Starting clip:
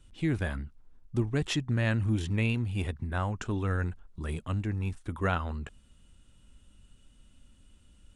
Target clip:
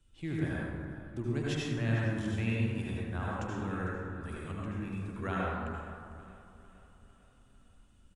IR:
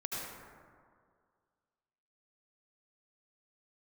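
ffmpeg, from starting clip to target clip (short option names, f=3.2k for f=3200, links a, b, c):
-filter_complex "[0:a]acrossover=split=100|890[a][b][c];[a]alimiter=level_in=15.5dB:limit=-24dB:level=0:latency=1,volume=-15.5dB[d];[d][b][c]amix=inputs=3:normalize=0,aecho=1:1:451|902|1353|1804|2255:0.133|0.072|0.0389|0.021|0.0113[e];[1:a]atrim=start_sample=2205[f];[e][f]afir=irnorm=-1:irlink=0,volume=-6dB"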